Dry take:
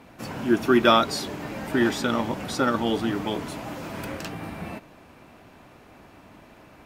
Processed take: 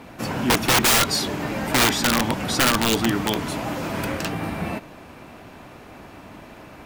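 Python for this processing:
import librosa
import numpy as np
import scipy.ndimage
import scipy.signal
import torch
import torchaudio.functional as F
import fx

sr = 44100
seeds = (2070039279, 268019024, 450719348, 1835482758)

y = fx.dynamic_eq(x, sr, hz=450.0, q=0.75, threshold_db=-34.0, ratio=4.0, max_db=-5)
y = (np.mod(10.0 ** (19.0 / 20.0) * y + 1.0, 2.0) - 1.0) / 10.0 ** (19.0 / 20.0)
y = y * librosa.db_to_amplitude(7.5)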